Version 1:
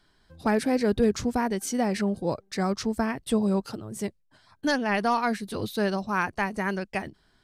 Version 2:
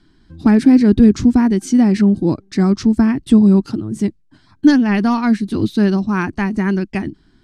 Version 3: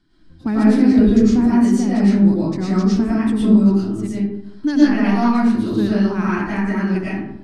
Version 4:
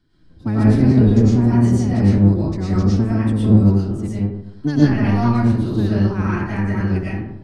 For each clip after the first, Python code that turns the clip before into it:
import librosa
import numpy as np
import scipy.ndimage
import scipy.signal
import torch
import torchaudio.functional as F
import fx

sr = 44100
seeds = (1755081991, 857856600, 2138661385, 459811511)

y1 = scipy.signal.sosfilt(scipy.signal.butter(2, 7900.0, 'lowpass', fs=sr, output='sos'), x)
y1 = fx.low_shelf_res(y1, sr, hz=400.0, db=8.0, q=3.0)
y1 = y1 * librosa.db_to_amplitude(4.5)
y2 = fx.rev_freeverb(y1, sr, rt60_s=0.81, hf_ratio=0.5, predelay_ms=70, drr_db=-8.5)
y2 = y2 * librosa.db_to_amplitude(-10.0)
y3 = fx.octave_divider(y2, sr, octaves=1, level_db=1.0)
y3 = y3 * librosa.db_to_amplitude(-3.0)